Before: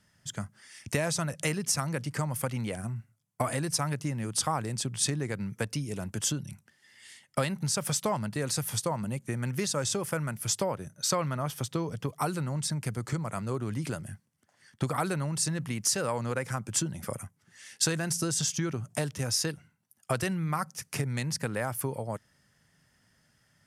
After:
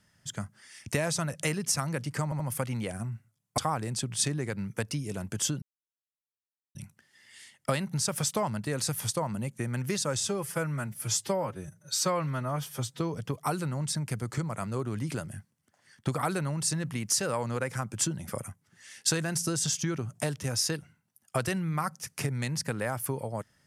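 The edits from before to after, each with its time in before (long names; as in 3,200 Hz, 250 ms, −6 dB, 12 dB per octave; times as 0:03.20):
0:02.24: stutter 0.08 s, 3 plays
0:03.42–0:04.40: remove
0:06.44: splice in silence 1.13 s
0:09.87–0:11.75: time-stretch 1.5×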